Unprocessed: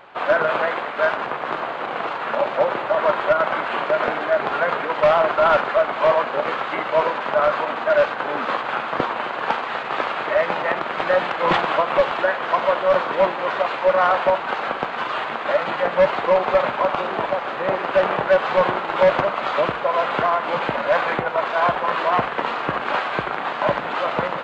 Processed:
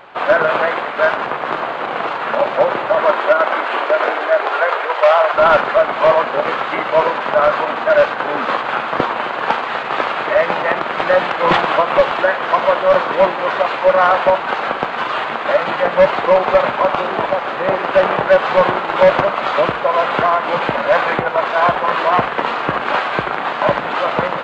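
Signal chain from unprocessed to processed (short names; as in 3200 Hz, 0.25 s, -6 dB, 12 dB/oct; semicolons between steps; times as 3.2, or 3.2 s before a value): 3.05–5.33 HPF 210 Hz -> 520 Hz 24 dB/oct; gain +5 dB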